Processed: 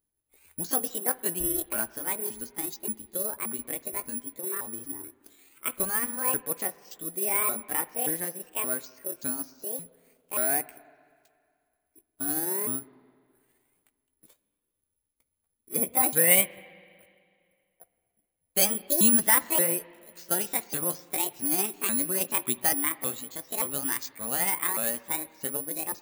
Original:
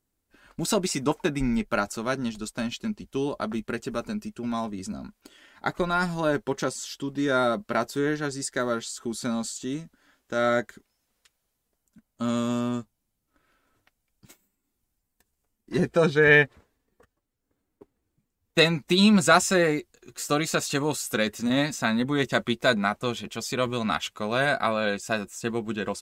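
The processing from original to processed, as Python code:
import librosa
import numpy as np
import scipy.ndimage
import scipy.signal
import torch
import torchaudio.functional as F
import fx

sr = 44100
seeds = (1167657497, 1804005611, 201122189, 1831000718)

y = fx.pitch_ramps(x, sr, semitones=10.0, every_ms=576)
y = (np.kron(scipy.signal.resample_poly(y, 1, 4), np.eye(4)[0]) * 4)[:len(y)]
y = fx.rev_spring(y, sr, rt60_s=2.2, pass_ms=(41, 54, 58), chirp_ms=35, drr_db=17.5)
y = F.gain(torch.from_numpy(y), -8.0).numpy()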